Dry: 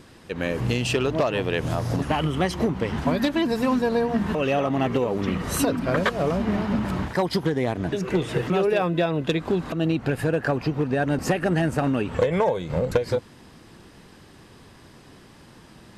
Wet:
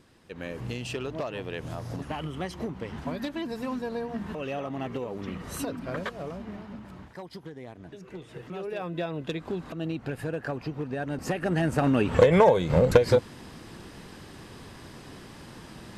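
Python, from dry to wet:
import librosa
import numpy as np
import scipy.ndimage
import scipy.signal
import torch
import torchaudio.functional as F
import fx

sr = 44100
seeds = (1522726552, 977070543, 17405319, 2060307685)

y = fx.gain(x, sr, db=fx.line((5.97, -10.5), (6.83, -18.5), (8.3, -18.5), (9.0, -9.0), (11.12, -9.0), (12.19, 3.5)))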